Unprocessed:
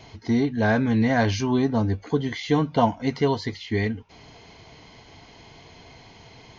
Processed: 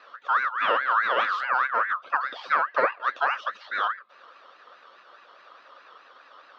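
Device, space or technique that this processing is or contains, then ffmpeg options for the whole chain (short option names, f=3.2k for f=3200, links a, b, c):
voice changer toy: -af "aeval=exprs='val(0)*sin(2*PI*1500*n/s+1500*0.25/4.8*sin(2*PI*4.8*n/s))':c=same,highpass=440,equalizer=f=550:t=q:w=4:g=9,equalizer=f=860:t=q:w=4:g=-3,equalizer=f=1.2k:t=q:w=4:g=9,equalizer=f=2.1k:t=q:w=4:g=-10,lowpass=f=3.9k:w=0.5412,lowpass=f=3.9k:w=1.3066,volume=-1.5dB"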